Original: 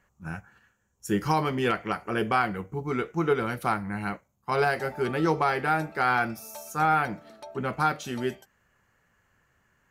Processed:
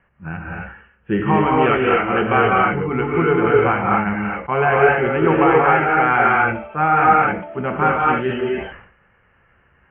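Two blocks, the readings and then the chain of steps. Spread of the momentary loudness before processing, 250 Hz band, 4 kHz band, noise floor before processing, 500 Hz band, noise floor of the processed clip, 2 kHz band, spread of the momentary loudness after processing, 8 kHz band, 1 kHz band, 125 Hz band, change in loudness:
14 LU, +10.0 dB, +4.5 dB, -71 dBFS, +12.0 dB, -58 dBFS, +11.0 dB, 12 LU, under -35 dB, +11.0 dB, +9.0 dB, +10.5 dB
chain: steep low-pass 3 kHz 96 dB/octave; gated-style reverb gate 290 ms rising, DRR -3.5 dB; decay stretcher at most 90 dB/s; trim +6 dB

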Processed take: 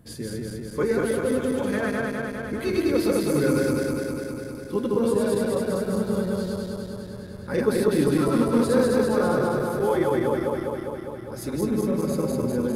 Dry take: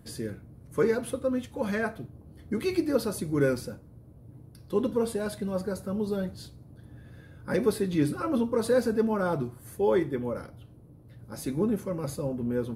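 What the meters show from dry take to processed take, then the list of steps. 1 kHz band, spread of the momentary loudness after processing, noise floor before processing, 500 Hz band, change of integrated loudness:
+6.5 dB, 12 LU, -52 dBFS, +5.5 dB, +4.5 dB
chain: backward echo that repeats 101 ms, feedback 84%, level -0.5 dB

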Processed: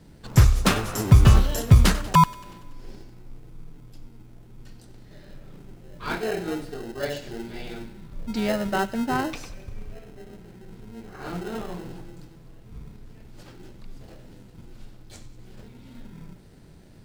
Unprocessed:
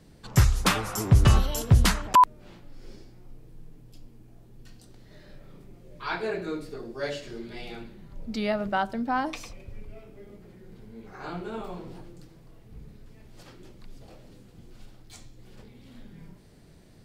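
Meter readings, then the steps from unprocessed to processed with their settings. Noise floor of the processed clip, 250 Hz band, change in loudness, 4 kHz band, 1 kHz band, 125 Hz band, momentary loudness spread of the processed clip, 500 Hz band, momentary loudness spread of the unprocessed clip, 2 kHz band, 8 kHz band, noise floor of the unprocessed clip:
-49 dBFS, +4.5 dB, +3.0 dB, +1.0 dB, -0.5 dB, +4.5 dB, 21 LU, +2.5 dB, 20 LU, +1.5 dB, +1.0 dB, -53 dBFS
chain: in parallel at -3.5 dB: sample-and-hold 38×; on the sum: feedback echo behind a high-pass 95 ms, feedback 62%, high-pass 1.5 kHz, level -17 dB

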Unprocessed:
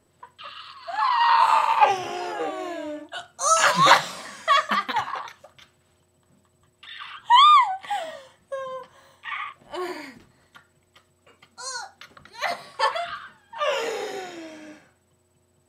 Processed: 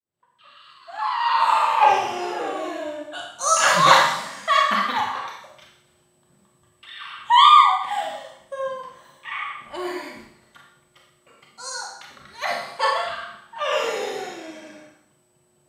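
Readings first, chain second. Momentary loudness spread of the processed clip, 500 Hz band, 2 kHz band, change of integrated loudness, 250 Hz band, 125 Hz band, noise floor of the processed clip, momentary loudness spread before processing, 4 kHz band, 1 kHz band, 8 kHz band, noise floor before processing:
22 LU, +2.5 dB, +2.0 dB, +2.0 dB, +1.5 dB, +1.5 dB, -63 dBFS, 22 LU, +2.0 dB, +2.0 dB, +2.0 dB, -65 dBFS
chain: fade-in on the opening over 1.85 s; Schroeder reverb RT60 0.71 s, combs from 28 ms, DRR -0.5 dB; trim -1 dB

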